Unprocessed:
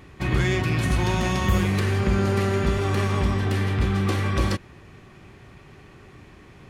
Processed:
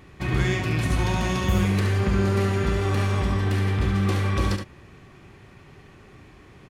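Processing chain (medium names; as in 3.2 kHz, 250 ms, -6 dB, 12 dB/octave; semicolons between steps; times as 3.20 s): delay 71 ms -6.5 dB; trim -2 dB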